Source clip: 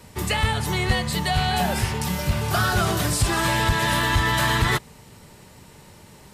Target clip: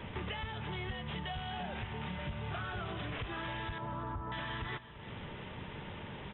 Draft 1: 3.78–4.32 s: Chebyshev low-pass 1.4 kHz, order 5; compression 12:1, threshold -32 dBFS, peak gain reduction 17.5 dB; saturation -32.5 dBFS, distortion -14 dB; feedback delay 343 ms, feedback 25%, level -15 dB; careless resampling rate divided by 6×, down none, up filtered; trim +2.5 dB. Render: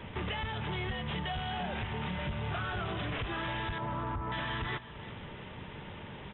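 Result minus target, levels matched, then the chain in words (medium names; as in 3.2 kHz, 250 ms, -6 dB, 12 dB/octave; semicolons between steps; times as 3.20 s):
compression: peak gain reduction -6 dB
3.78–4.32 s: Chebyshev low-pass 1.4 kHz, order 5; compression 12:1, threshold -38.5 dBFS, peak gain reduction 23.5 dB; saturation -32.5 dBFS, distortion -22 dB; feedback delay 343 ms, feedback 25%, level -15 dB; careless resampling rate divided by 6×, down none, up filtered; trim +2.5 dB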